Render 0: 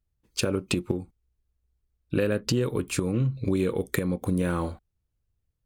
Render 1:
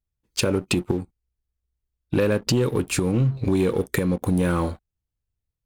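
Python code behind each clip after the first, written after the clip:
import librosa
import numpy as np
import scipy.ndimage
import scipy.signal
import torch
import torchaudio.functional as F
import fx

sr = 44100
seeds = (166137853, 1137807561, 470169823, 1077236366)

y = fx.leveller(x, sr, passes=2)
y = F.gain(torch.from_numpy(y), -2.0).numpy()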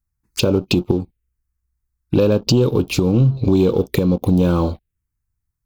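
y = fx.env_phaser(x, sr, low_hz=550.0, high_hz=1900.0, full_db=-21.0)
y = F.gain(torch.from_numpy(y), 6.5).numpy()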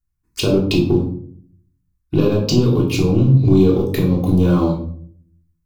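y = fx.room_shoebox(x, sr, seeds[0], volume_m3=670.0, walls='furnished', distance_m=3.3)
y = F.gain(torch.from_numpy(y), -5.0).numpy()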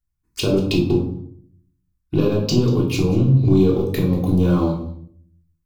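y = x + 10.0 ** (-18.0 / 20.0) * np.pad(x, (int(189 * sr / 1000.0), 0))[:len(x)]
y = F.gain(torch.from_numpy(y), -2.5).numpy()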